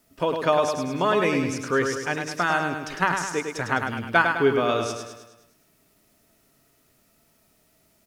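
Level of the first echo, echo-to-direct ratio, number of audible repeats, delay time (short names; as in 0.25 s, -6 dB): -5.5 dB, -4.0 dB, 6, 0.104 s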